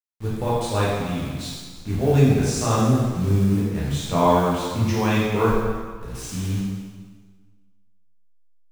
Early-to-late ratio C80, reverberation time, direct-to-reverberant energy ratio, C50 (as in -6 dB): 1.0 dB, 1.5 s, -8.0 dB, -1.5 dB